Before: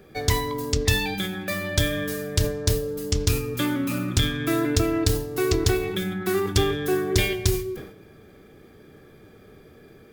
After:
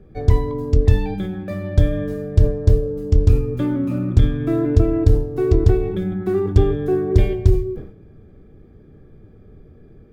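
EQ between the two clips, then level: tilt -4.5 dB/oct; dynamic EQ 550 Hz, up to +7 dB, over -30 dBFS, Q 0.74; bell 13000 Hz +2 dB 1.7 oct; -7.0 dB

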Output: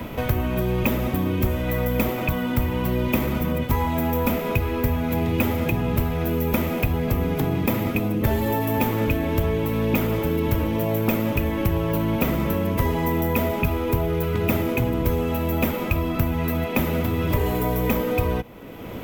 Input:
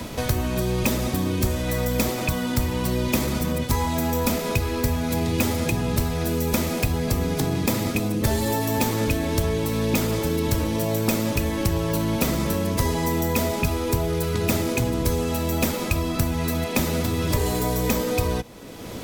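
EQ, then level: band shelf 6400 Hz -14 dB; notch 1700 Hz, Q 24; +1.0 dB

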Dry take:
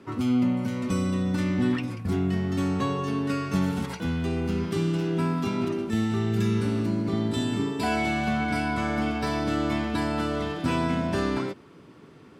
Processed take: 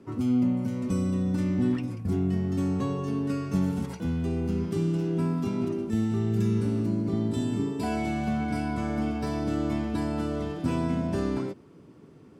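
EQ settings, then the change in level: bell 1700 Hz -9 dB 2.5 oct; bell 3800 Hz -4.5 dB 0.71 oct; high shelf 7700 Hz -5 dB; 0.0 dB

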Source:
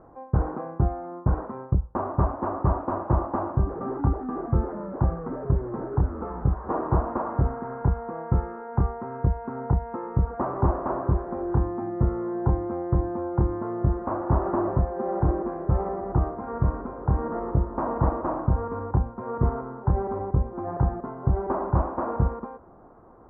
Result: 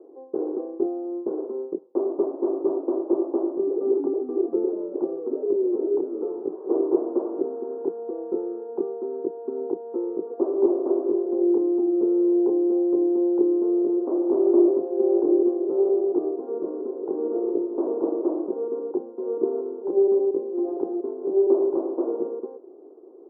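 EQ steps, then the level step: steep high-pass 300 Hz 36 dB/oct; synth low-pass 390 Hz, resonance Q 4.7; 0.0 dB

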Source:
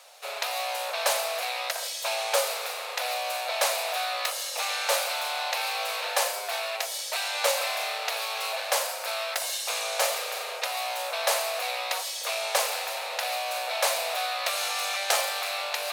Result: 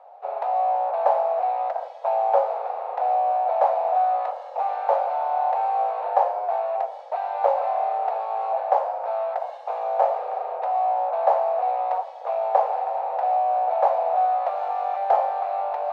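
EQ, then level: synth low-pass 790 Hz, resonance Q 4.9; 0.0 dB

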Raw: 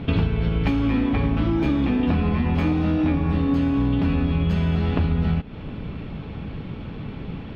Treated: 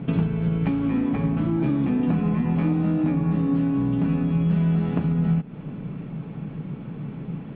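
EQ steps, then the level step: air absorption 440 m; resonant low shelf 110 Hz -9.5 dB, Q 3; -2.5 dB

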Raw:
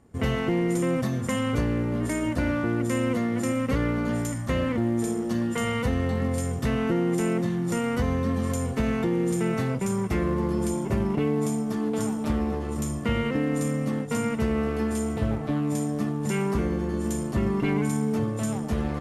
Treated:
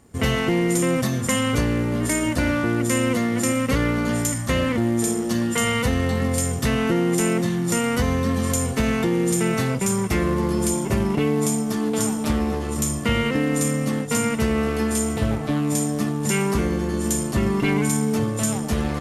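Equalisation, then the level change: high shelf 2500 Hz +10 dB; +3.5 dB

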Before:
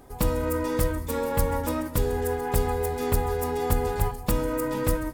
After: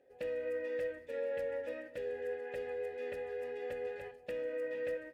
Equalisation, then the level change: vowel filter e; dynamic EQ 2000 Hz, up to +6 dB, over -55 dBFS, Q 0.73; -4.0 dB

